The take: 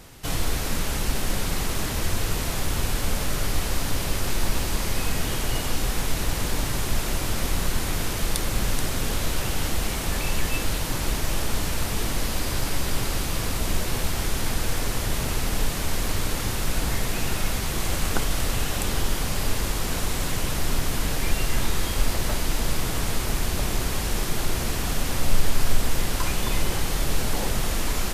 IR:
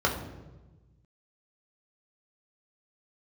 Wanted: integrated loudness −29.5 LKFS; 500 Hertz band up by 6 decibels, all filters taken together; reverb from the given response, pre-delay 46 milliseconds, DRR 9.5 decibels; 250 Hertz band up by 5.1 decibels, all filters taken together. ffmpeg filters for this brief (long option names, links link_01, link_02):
-filter_complex "[0:a]equalizer=frequency=250:width_type=o:gain=5,equalizer=frequency=500:width_type=o:gain=6,asplit=2[link_01][link_02];[1:a]atrim=start_sample=2205,adelay=46[link_03];[link_02][link_03]afir=irnorm=-1:irlink=0,volume=-22.5dB[link_04];[link_01][link_04]amix=inputs=2:normalize=0,volume=-4.5dB"